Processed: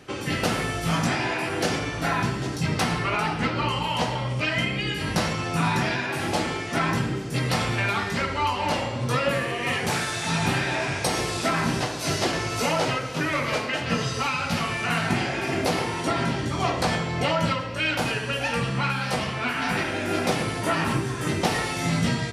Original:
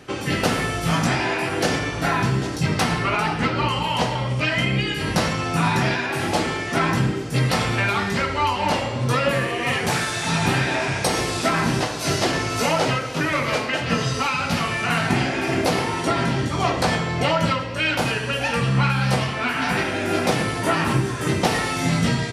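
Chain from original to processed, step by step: de-hum 65.52 Hz, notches 30; trim -3 dB

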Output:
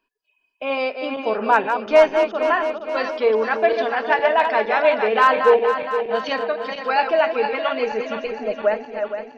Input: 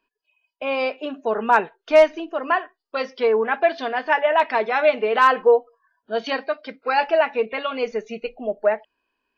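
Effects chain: backward echo that repeats 233 ms, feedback 71%, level -6.5 dB

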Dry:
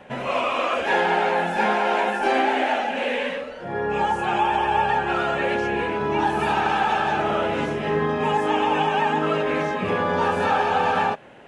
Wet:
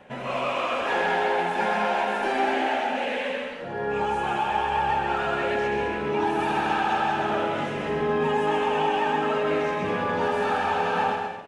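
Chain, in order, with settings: in parallel at -10 dB: hard clipper -22 dBFS, distortion -9 dB; on the sum: bouncing-ball echo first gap 130 ms, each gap 0.65×, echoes 5; trim -7 dB

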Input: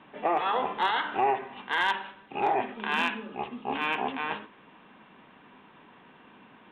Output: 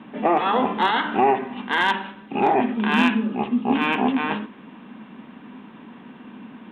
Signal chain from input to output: peaking EQ 230 Hz +14.5 dB 0.87 oct; trim +5.5 dB

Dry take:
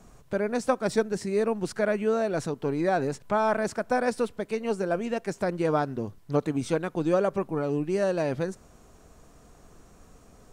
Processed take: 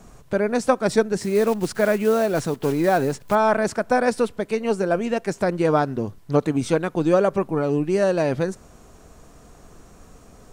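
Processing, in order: 1.19–3.37 s: block-companded coder 5-bit; trim +6 dB

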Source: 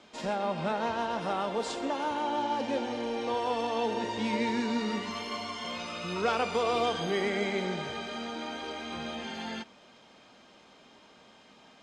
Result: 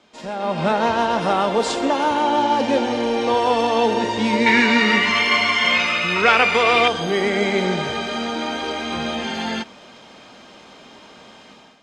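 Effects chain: 4.46–6.88 s: peaking EQ 2.1 kHz +15 dB 1.2 oct; level rider gain up to 12.5 dB

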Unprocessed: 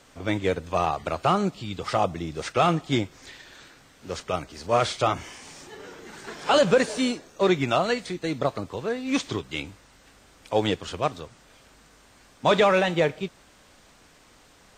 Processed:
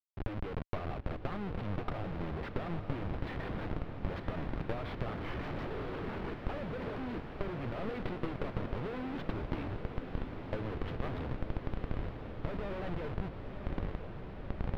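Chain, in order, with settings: median filter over 3 samples; reverse; compression 16:1, threshold -36 dBFS, peak gain reduction 23 dB; reverse; rotary cabinet horn 6 Hz, later 1.1 Hz, at 9.40 s; Schmitt trigger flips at -47.5 dBFS; power-law waveshaper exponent 3; distance through air 390 m; on a send: echo that smears into a reverb 994 ms, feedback 76%, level -8 dB; on the sum: trim +17.5 dB

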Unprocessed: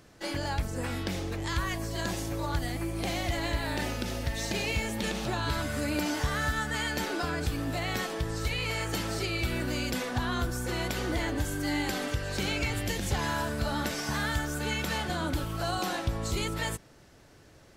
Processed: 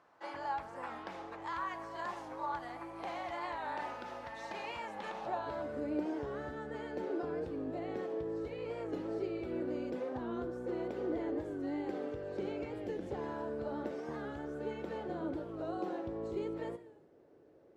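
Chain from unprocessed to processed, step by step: gated-style reverb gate 380 ms falling, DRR 12 dB; band-pass sweep 970 Hz -> 420 Hz, 5.07–5.83 s; warped record 45 rpm, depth 100 cents; trim +1 dB

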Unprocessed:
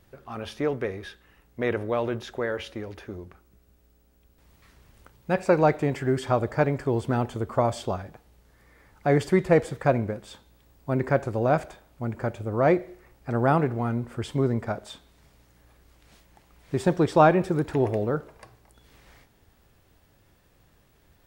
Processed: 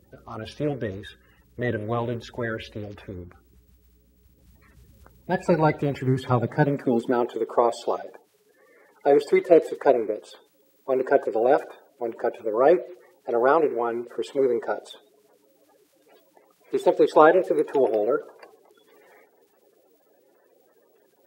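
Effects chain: coarse spectral quantiser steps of 30 dB; high-pass sweep 64 Hz -> 430 Hz, 5.85–7.42 s

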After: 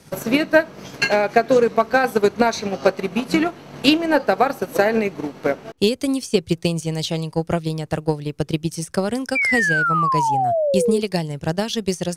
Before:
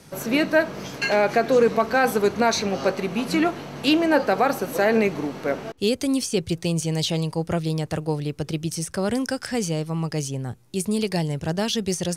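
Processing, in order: transient shaper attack +9 dB, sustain -5 dB; painted sound fall, 9.35–11.00 s, 410–2400 Hz -18 dBFS; trim -1 dB

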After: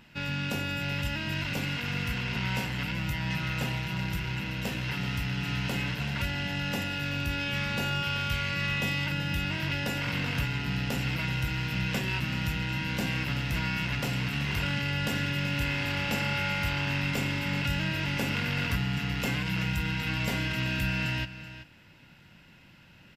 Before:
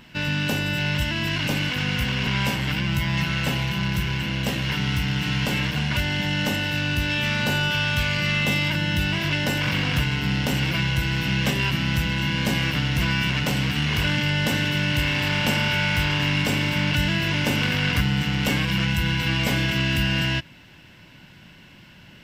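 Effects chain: speed mistake 25 fps video run at 24 fps; delay 381 ms -13.5 dB; trim -7.5 dB

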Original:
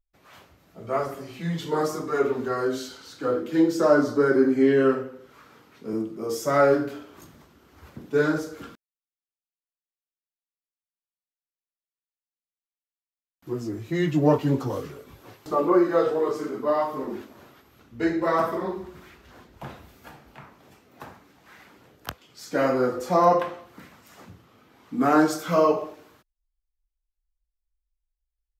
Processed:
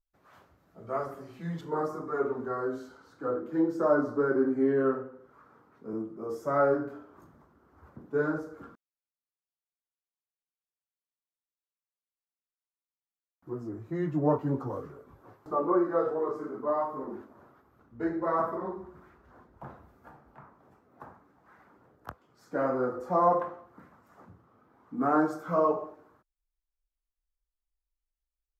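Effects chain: resonant high shelf 1.9 kHz -6.5 dB, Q 1.5, from 1.61 s -13.5 dB; trim -7 dB

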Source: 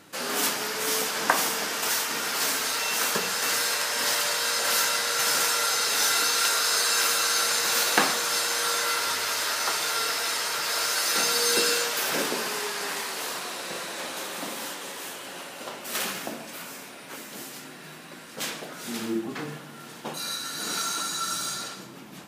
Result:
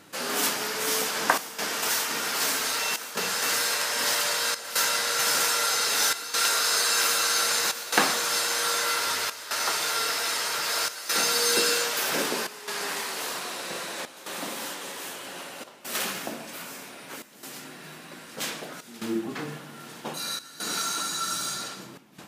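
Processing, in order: trance gate "xxxxxxxxxxxxx.." 142 bpm -12 dB

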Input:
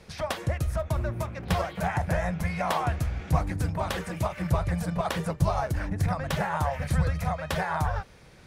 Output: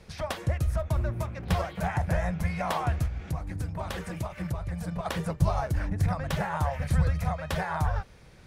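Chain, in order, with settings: bass shelf 110 Hz +6 dB; 3.06–5.06 s: compression 4:1, threshold -27 dBFS, peak gain reduction 11 dB; trim -2.5 dB

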